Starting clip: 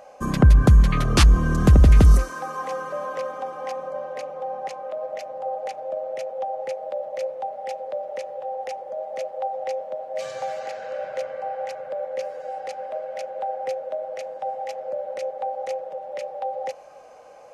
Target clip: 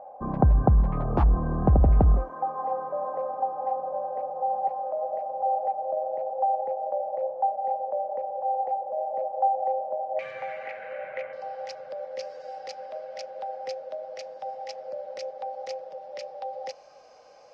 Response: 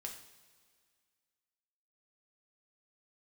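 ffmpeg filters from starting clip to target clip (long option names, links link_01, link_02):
-af "asetnsamples=nb_out_samples=441:pad=0,asendcmd='10.19 lowpass f 2200;11.33 lowpass f 5100',lowpass=frequency=800:width_type=q:width=4.2,volume=-6.5dB"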